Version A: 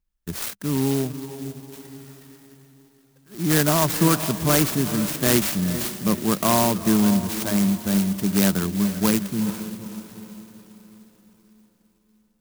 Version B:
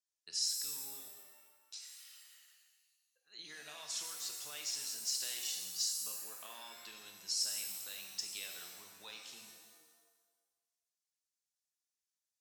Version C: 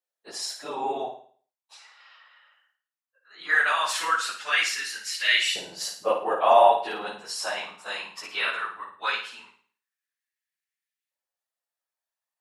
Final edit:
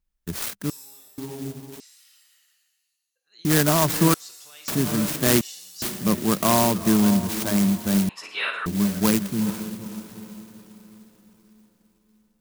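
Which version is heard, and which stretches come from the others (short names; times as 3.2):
A
0.7–1.18 from B
1.8–3.45 from B
4.14–4.68 from B
5.41–5.82 from B
8.09–8.66 from C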